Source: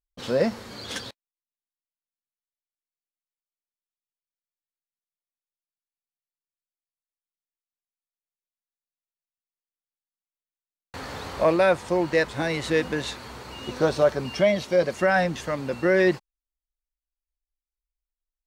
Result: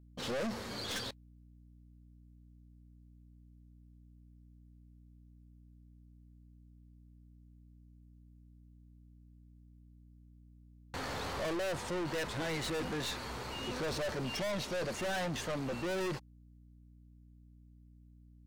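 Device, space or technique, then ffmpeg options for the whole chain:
valve amplifier with mains hum: -af "aeval=exprs='(tanh(50.1*val(0)+0.25)-tanh(0.25))/50.1':c=same,aeval=exprs='val(0)+0.00141*(sin(2*PI*60*n/s)+sin(2*PI*2*60*n/s)/2+sin(2*PI*3*60*n/s)/3+sin(2*PI*4*60*n/s)/4+sin(2*PI*5*60*n/s)/5)':c=same"

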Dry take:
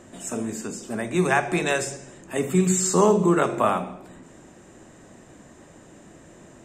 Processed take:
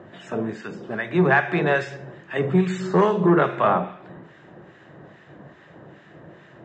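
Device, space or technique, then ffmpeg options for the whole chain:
guitar amplifier with harmonic tremolo: -filter_complex "[0:a]acrossover=split=1300[a][b];[a]aeval=exprs='val(0)*(1-0.7/2+0.7/2*cos(2*PI*2.4*n/s))':c=same[c];[b]aeval=exprs='val(0)*(1-0.7/2-0.7/2*cos(2*PI*2.4*n/s))':c=same[d];[c][d]amix=inputs=2:normalize=0,asoftclip=type=tanh:threshold=-14.5dB,highpass=110,equalizer=f=140:t=q:w=4:g=6,equalizer=f=250:t=q:w=4:g=-9,equalizer=f=1.7k:t=q:w=4:g=5,equalizer=f=2.4k:t=q:w=4:g=-4,lowpass=f=3.6k:w=0.5412,lowpass=f=3.6k:w=1.3066,volume=6.5dB"

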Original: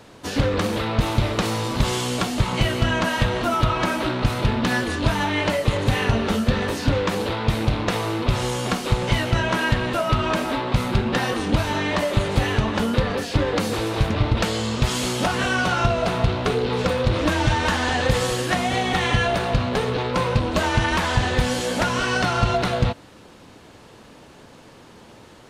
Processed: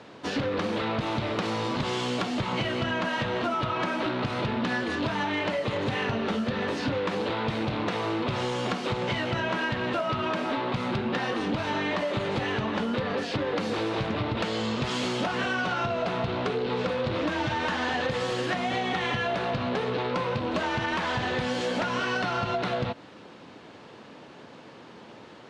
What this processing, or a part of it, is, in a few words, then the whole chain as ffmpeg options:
AM radio: -af "highpass=150,lowpass=4.3k,acompressor=threshold=-24dB:ratio=6,asoftclip=type=tanh:threshold=-16.5dB"

